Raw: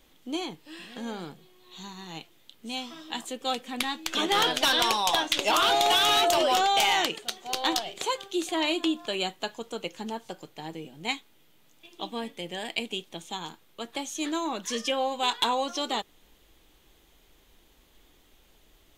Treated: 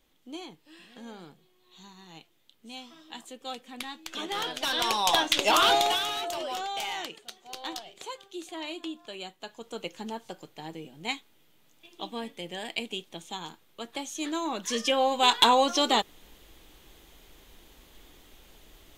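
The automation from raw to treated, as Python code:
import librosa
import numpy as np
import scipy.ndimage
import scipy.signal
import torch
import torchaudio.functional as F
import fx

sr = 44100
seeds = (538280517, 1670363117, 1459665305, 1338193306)

y = fx.gain(x, sr, db=fx.line((4.54, -8.5), (5.11, 1.5), (5.73, 1.5), (6.13, -10.5), (9.38, -10.5), (9.78, -2.0), (14.29, -2.0), (15.4, 6.0)))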